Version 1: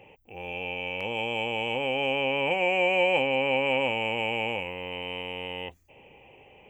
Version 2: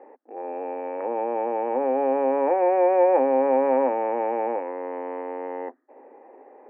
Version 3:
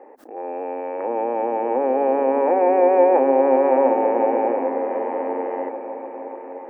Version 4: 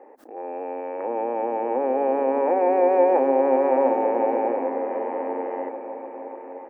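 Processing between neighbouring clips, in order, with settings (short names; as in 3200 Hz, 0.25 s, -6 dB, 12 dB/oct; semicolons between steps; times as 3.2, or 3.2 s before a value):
Chebyshev band-pass 250–1800 Hz, order 5; gain +7.5 dB
repeats that get brighter 0.299 s, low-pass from 200 Hz, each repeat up 1 oct, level -3 dB; backwards sustainer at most 130 dB/s; gain +3 dB
speakerphone echo 90 ms, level -24 dB; gain -3 dB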